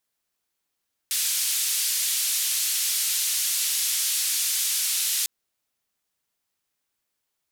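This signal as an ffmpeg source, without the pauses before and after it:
ffmpeg -f lavfi -i "anoisesrc=color=white:duration=4.15:sample_rate=44100:seed=1,highpass=frequency=3200,lowpass=frequency=13000,volume=-16.5dB" out.wav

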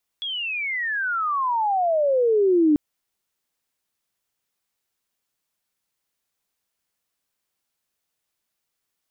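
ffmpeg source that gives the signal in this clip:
ffmpeg -f lavfi -i "aevalsrc='pow(10,(-26+12.5*t/2.54)/20)*sin(2*PI*3400*2.54/log(290/3400)*(exp(log(290/3400)*t/2.54)-1))':duration=2.54:sample_rate=44100" out.wav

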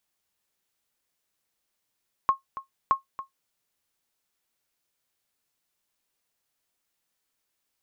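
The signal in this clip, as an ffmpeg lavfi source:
ffmpeg -f lavfi -i "aevalsrc='0.251*(sin(2*PI*1080*mod(t,0.62))*exp(-6.91*mod(t,0.62)/0.13)+0.188*sin(2*PI*1080*max(mod(t,0.62)-0.28,0))*exp(-6.91*max(mod(t,0.62)-0.28,0)/0.13))':duration=1.24:sample_rate=44100" out.wav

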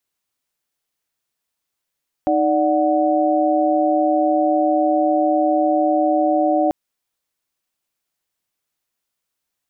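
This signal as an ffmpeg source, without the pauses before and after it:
ffmpeg -f lavfi -i "aevalsrc='0.119*(sin(2*PI*311.13*t)+sin(2*PI*587.33*t)+sin(2*PI*739.99*t))':duration=4.44:sample_rate=44100" out.wav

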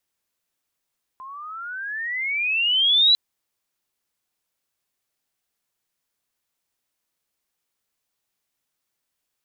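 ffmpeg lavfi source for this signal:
ffmpeg -f lavfi -i "aevalsrc='pow(10,(-12+23.5*(t/1.95-1))/20)*sin(2*PI*1030*1.95/(23.5*log(2)/12)*(exp(23.5*log(2)/12*t/1.95)-1))':duration=1.95:sample_rate=44100" out.wav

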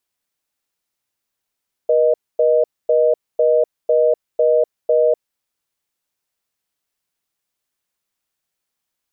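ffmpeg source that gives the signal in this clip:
ffmpeg -f lavfi -i "aevalsrc='0.2*(sin(2*PI*480*t)+sin(2*PI*620*t))*clip(min(mod(t,0.5),0.25-mod(t,0.5))/0.005,0,1)':duration=3.45:sample_rate=44100" out.wav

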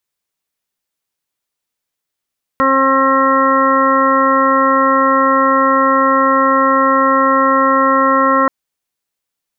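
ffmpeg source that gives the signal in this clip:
ffmpeg -f lavfi -i "aevalsrc='0.141*sin(2*PI*268*t)+0.158*sin(2*PI*536*t)+0.0316*sin(2*PI*804*t)+0.237*sin(2*PI*1072*t)+0.168*sin(2*PI*1340*t)+0.02*sin(2*PI*1608*t)+0.0944*sin(2*PI*1876*t)':duration=5.88:sample_rate=44100" out.wav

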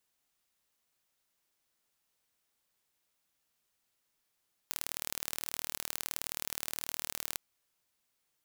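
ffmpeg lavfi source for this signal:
ffmpeg -f lavfi -i "aevalsrc='0.447*eq(mod(n,1145),0)*(0.5+0.5*eq(mod(n,2290),0))':duration=2.66:sample_rate=44100" out.wav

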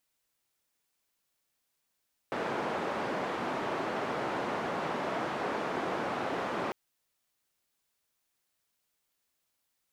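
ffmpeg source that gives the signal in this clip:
ffmpeg -f lavfi -i "anoisesrc=color=white:duration=4.4:sample_rate=44100:seed=1,highpass=frequency=200,lowpass=frequency=980,volume=-14.7dB" out.wav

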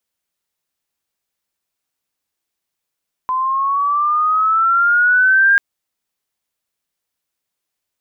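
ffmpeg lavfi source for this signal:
ffmpeg -f lavfi -i "aevalsrc='pow(10,(-8+7.5*(t/2.29-1))/20)*sin(2*PI*1020*2.29/(8*log(2)/12)*(exp(8*log(2)/12*t/2.29)-1))':duration=2.29:sample_rate=44100" out.wav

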